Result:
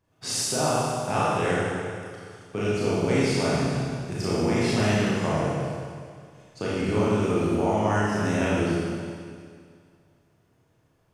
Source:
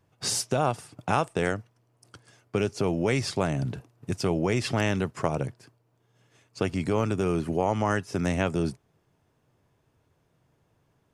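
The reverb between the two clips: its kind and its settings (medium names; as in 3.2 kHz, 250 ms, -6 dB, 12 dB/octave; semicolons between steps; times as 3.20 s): Schroeder reverb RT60 2.1 s, combs from 26 ms, DRR -8.5 dB; trim -6 dB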